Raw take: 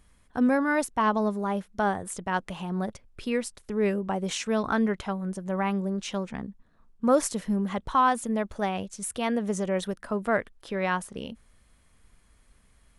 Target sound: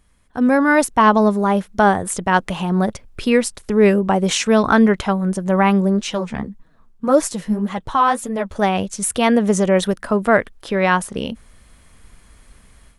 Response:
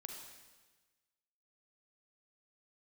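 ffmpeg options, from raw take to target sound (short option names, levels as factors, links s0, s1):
-filter_complex "[0:a]dynaudnorm=f=330:g=3:m=3.98,asplit=3[s0][s1][s2];[s0]afade=t=out:st=5.97:d=0.02[s3];[s1]flanger=delay=6.1:depth=8:regen=25:speed=1.8:shape=sinusoidal,afade=t=in:st=5.97:d=0.02,afade=t=out:st=8.54:d=0.02[s4];[s2]afade=t=in:st=8.54:d=0.02[s5];[s3][s4][s5]amix=inputs=3:normalize=0,volume=1.12"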